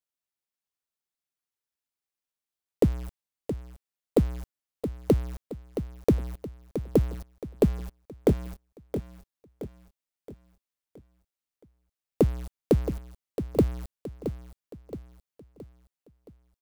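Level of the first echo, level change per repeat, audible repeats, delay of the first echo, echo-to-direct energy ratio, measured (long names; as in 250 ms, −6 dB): −10.0 dB, −7.0 dB, 4, 671 ms, −9.0 dB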